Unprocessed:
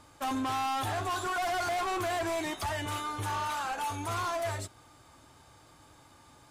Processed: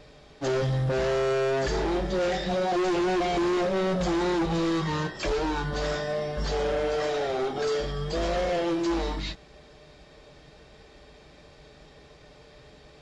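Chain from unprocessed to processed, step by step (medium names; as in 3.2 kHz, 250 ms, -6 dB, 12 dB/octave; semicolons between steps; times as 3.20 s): companded quantiser 8-bit; speed mistake 15 ips tape played at 7.5 ips; trim +6 dB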